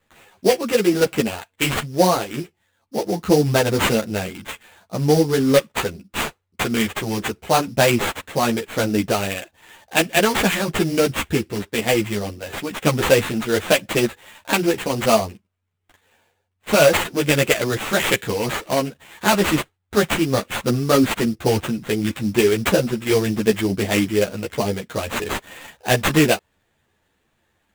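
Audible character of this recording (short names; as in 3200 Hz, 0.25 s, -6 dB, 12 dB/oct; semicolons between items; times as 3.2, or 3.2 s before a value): aliases and images of a low sample rate 5300 Hz, jitter 20%; a shimmering, thickened sound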